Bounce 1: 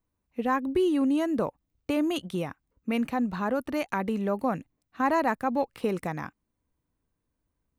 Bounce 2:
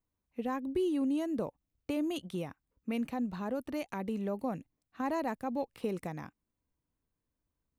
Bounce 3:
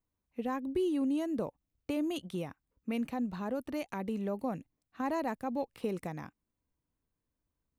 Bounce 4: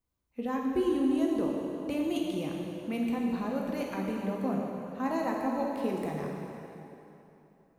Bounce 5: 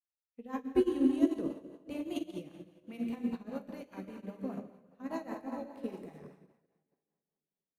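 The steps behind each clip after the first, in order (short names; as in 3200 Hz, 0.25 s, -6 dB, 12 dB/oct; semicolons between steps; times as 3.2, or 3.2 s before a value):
dynamic EQ 1400 Hz, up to -8 dB, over -42 dBFS, Q 0.98; gain -6 dB
nothing audible
plate-style reverb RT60 3.1 s, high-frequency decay 0.85×, DRR -1.5 dB
rotary speaker horn 5 Hz; upward expander 2.5:1, over -50 dBFS; gain +4 dB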